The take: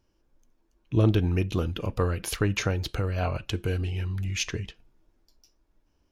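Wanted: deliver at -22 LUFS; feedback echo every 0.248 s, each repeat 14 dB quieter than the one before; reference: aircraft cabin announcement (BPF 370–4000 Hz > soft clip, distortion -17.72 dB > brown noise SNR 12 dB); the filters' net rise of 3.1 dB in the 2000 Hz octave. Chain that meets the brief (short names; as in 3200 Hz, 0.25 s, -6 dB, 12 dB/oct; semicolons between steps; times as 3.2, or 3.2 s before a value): BPF 370–4000 Hz; bell 2000 Hz +4.5 dB; feedback echo 0.248 s, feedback 20%, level -14 dB; soft clip -19 dBFS; brown noise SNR 12 dB; gain +12 dB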